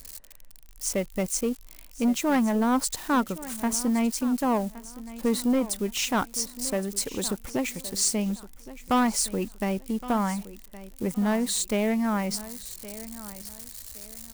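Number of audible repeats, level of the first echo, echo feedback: 2, -16.5 dB, 29%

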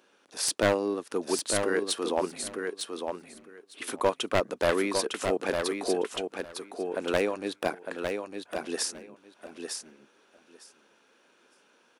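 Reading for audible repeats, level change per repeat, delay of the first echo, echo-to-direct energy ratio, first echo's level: 2, -16.5 dB, 0.905 s, -5.5 dB, -5.5 dB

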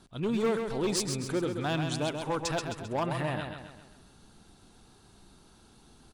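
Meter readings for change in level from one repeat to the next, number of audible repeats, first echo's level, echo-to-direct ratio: -6.5 dB, 5, -6.0 dB, -5.0 dB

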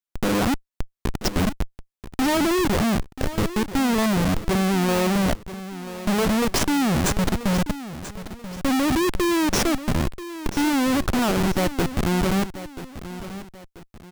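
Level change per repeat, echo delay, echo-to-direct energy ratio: -8.5 dB, 0.985 s, -13.0 dB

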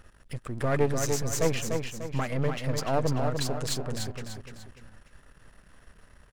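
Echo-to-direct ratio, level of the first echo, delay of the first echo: -4.0 dB, -5.0 dB, 0.296 s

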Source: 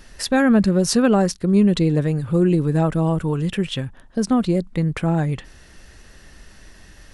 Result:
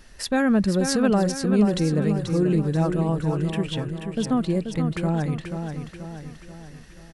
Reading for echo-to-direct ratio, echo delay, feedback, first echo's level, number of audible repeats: -5.5 dB, 0.484 s, 50%, -7.0 dB, 5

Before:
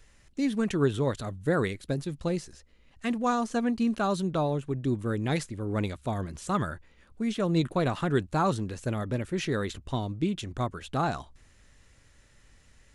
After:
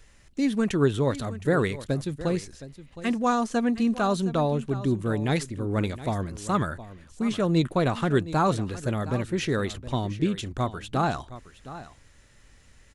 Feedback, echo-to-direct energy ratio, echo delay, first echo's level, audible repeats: no steady repeat, -15.0 dB, 0.716 s, -15.0 dB, 1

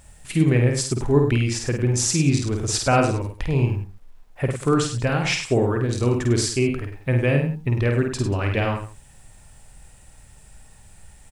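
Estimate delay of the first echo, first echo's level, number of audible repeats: 50 ms, -4.5 dB, 3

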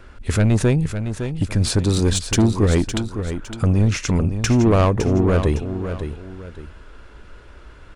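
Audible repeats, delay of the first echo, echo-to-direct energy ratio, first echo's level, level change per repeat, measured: 2, 0.559 s, -8.5 dB, -9.0 dB, -9.5 dB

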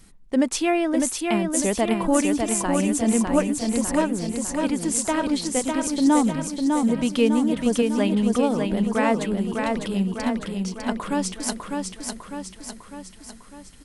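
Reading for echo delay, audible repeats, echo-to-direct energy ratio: 0.602 s, 6, -2.5 dB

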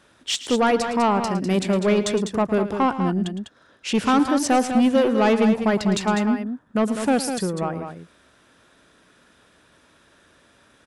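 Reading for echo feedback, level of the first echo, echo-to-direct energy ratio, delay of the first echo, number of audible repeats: no steady repeat, -14.0 dB, -7.0 dB, 0.11 s, 2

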